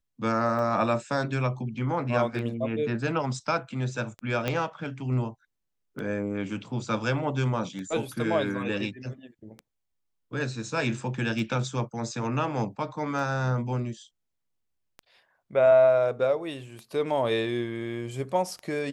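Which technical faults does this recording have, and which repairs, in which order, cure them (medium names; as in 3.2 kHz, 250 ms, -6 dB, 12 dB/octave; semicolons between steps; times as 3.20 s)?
tick 33 1/3 rpm -25 dBFS
4.48 s: pop -13 dBFS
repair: de-click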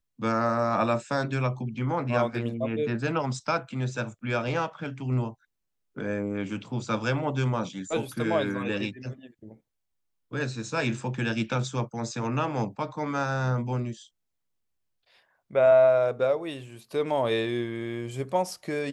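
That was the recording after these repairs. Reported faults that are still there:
4.48 s: pop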